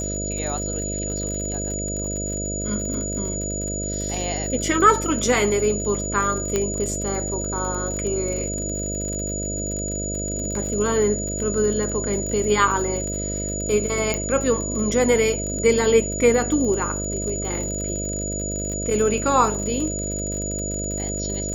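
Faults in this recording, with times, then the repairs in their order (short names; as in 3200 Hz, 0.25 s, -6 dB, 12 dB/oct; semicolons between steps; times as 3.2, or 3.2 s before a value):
buzz 50 Hz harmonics 13 -29 dBFS
crackle 47/s -28 dBFS
tone 6900 Hz -28 dBFS
6.56 pop -8 dBFS
14.14 pop -9 dBFS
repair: de-click; de-hum 50 Hz, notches 13; notch 6900 Hz, Q 30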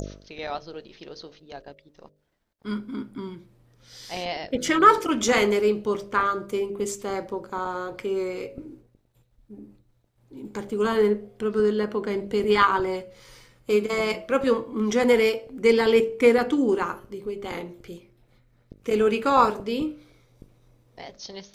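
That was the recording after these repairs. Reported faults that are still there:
none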